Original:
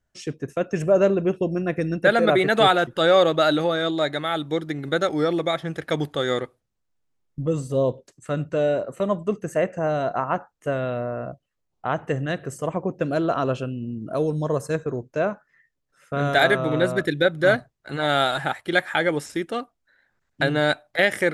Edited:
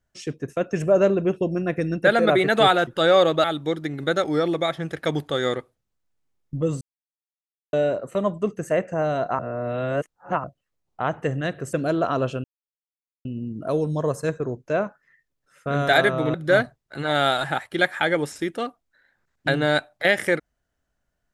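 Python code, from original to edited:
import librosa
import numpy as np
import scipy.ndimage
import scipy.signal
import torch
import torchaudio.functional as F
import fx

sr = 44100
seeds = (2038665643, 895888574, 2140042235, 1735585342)

y = fx.edit(x, sr, fx.cut(start_s=3.44, length_s=0.85),
    fx.silence(start_s=7.66, length_s=0.92),
    fx.reverse_span(start_s=10.24, length_s=1.05),
    fx.cut(start_s=12.58, length_s=0.42),
    fx.insert_silence(at_s=13.71, length_s=0.81),
    fx.cut(start_s=16.8, length_s=0.48), tone=tone)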